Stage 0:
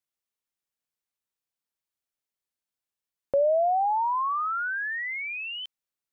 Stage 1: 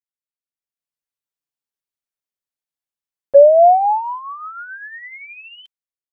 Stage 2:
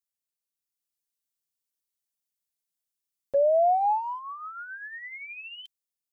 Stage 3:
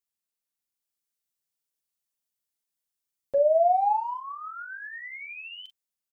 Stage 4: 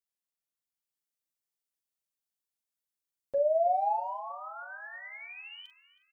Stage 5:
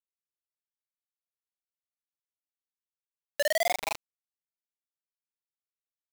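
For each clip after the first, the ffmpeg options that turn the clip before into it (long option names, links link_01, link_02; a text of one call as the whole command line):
ffmpeg -i in.wav -af "agate=range=-18dB:threshold=-24dB:ratio=16:detection=peak,aecho=1:1:7.1:0.33,dynaudnorm=framelen=200:gausssize=7:maxgain=11.5dB,volume=3dB" out.wav
ffmpeg -i in.wav -af "equalizer=frequency=1300:width=0.38:gain=-7,alimiter=limit=-15.5dB:level=0:latency=1:release=145,highshelf=frequency=2500:gain=9,volume=-2.5dB" out.wav
ffmpeg -i in.wav -filter_complex "[0:a]asplit=2[link_01][link_02];[link_02]adelay=42,volume=-8.5dB[link_03];[link_01][link_03]amix=inputs=2:normalize=0" out.wav
ffmpeg -i in.wav -filter_complex "[0:a]asplit=2[link_01][link_02];[link_02]adelay=320,lowpass=frequency=2300:poles=1,volume=-14dB,asplit=2[link_03][link_04];[link_04]adelay=320,lowpass=frequency=2300:poles=1,volume=0.49,asplit=2[link_05][link_06];[link_06]adelay=320,lowpass=frequency=2300:poles=1,volume=0.49,asplit=2[link_07][link_08];[link_08]adelay=320,lowpass=frequency=2300:poles=1,volume=0.49,asplit=2[link_09][link_10];[link_10]adelay=320,lowpass=frequency=2300:poles=1,volume=0.49[link_11];[link_01][link_03][link_05][link_07][link_09][link_11]amix=inputs=6:normalize=0,volume=-5.5dB" out.wav
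ffmpeg -i in.wav -af "acrusher=bits=3:mix=0:aa=0.000001,volume=-3.5dB" out.wav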